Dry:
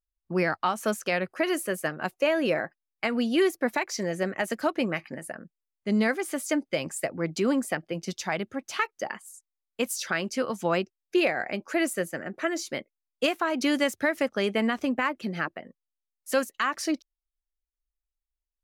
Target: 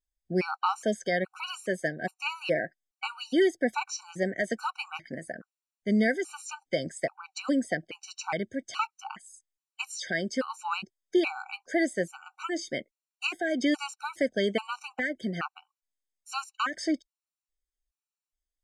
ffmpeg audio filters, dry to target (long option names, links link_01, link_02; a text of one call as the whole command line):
ffmpeg -i in.wav -filter_complex "[0:a]lowpass=frequency=8000:width_type=q:width=1.9,acrossover=split=6300[link_01][link_02];[link_02]acompressor=threshold=-49dB:ratio=4:attack=1:release=60[link_03];[link_01][link_03]amix=inputs=2:normalize=0,afftfilt=real='re*gt(sin(2*PI*1.2*pts/sr)*(1-2*mod(floor(b*sr/1024/760),2)),0)':imag='im*gt(sin(2*PI*1.2*pts/sr)*(1-2*mod(floor(b*sr/1024/760),2)),0)':win_size=1024:overlap=0.75" out.wav